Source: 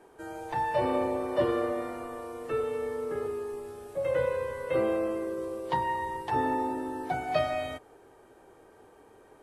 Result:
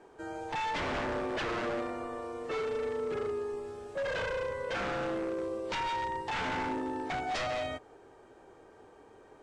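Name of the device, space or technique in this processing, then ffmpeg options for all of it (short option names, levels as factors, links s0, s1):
synthesiser wavefolder: -af "aeval=exprs='0.0376*(abs(mod(val(0)/0.0376+3,4)-2)-1)':c=same,lowpass=f=7800:w=0.5412,lowpass=f=7800:w=1.3066"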